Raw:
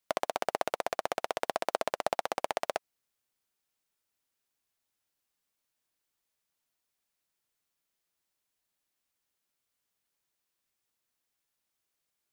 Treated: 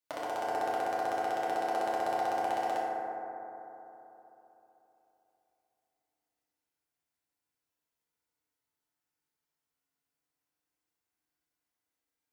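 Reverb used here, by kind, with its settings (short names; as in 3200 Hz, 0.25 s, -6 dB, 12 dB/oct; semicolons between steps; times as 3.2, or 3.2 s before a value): FDN reverb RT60 3.5 s, high-frequency decay 0.25×, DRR -8 dB; gain -11 dB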